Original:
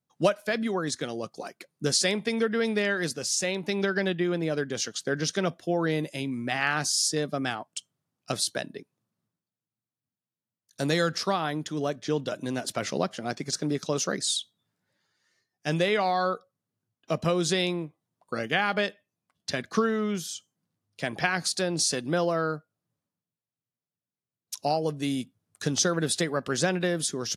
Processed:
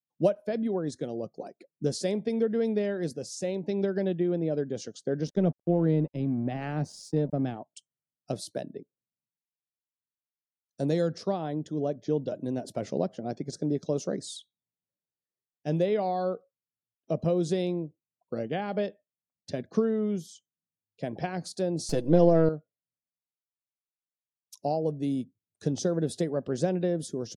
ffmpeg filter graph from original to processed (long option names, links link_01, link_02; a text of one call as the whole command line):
ffmpeg -i in.wav -filter_complex "[0:a]asettb=1/sr,asplit=3[link_01][link_02][link_03];[link_01]atrim=end=5.274[link_04];[link_02]atrim=start=5.27:end=7.57,asetpts=PTS-STARTPTS,afade=type=in:duration=0.004:curve=qsin,afade=type=out:start_time=2.296:duration=0.004:curve=qsin,highpass=110,bass=frequency=250:gain=10,treble=frequency=4000:gain=-7,aeval=exprs='sgn(val(0))*max(abs(val(0))-0.01,0)':channel_layout=same[link_05];[link_03]atrim=start=7.566[link_06];[link_04][link_05]acrossfade=duration=0.004:curve1=hsin:curve2=qsin[link_07];[link_07][link_06]acrossfade=duration=0.004:curve1=qsin:curve2=hsin,asettb=1/sr,asplit=3[link_08][link_09][link_10];[link_08]atrim=end=21.894[link_11];[link_09]atrim=start=21.89:end=22.49,asetpts=PTS-STARTPTS,afade=type=in:duration=0.004:curve=qsin,afade=type=out:start_time=0.596:duration=0.004:curve=qsin,aeval=exprs='if(lt(val(0),0),0.447*val(0),val(0))':channel_layout=same,aecho=1:1:6.1:0.51,atrim=end_sample=26460,acontrast=58[link_12];[link_10]atrim=start=22.486[link_13];[link_11][link_12]acrossfade=duration=0.004:curve1=hsin:curve2=qsin[link_14];[link_14][link_13]acrossfade=duration=0.004:curve1=qsin:curve2=hsin,afftdn=noise_reduction=20:noise_floor=-50,firequalizer=gain_entry='entry(580,0);entry(1200,-16);entry(5000,-13)':delay=0.05:min_phase=1" out.wav